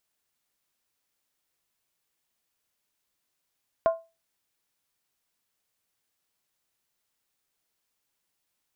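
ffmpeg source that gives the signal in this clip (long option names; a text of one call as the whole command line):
ffmpeg -f lavfi -i "aevalsrc='0.178*pow(10,-3*t/0.27)*sin(2*PI*660*t)+0.0562*pow(10,-3*t/0.214)*sin(2*PI*1052*t)+0.0178*pow(10,-3*t/0.185)*sin(2*PI*1409.8*t)+0.00562*pow(10,-3*t/0.178)*sin(2*PI*1515.4*t)+0.00178*pow(10,-3*t/0.166)*sin(2*PI*1751*t)':duration=0.63:sample_rate=44100" out.wav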